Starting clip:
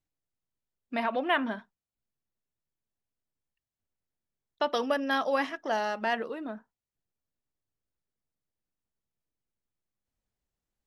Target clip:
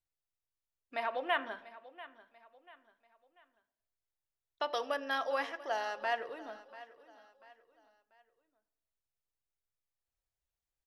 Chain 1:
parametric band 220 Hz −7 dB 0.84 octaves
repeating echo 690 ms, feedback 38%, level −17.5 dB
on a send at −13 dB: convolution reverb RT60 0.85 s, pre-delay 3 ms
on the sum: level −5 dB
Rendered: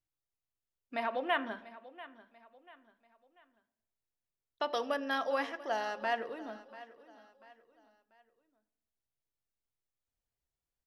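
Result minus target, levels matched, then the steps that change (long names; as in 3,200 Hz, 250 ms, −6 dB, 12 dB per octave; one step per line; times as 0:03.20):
250 Hz band +6.0 dB
change: parametric band 220 Hz −18.5 dB 0.84 octaves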